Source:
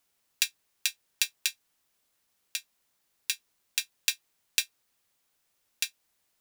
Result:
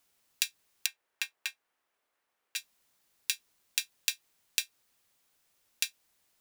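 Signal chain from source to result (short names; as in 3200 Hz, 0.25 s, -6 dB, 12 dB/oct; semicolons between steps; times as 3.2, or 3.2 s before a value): 0.86–2.56 three-band isolator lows -15 dB, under 330 Hz, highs -14 dB, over 2400 Hz; compressor, threshold -27 dBFS, peak gain reduction 7 dB; gain +2 dB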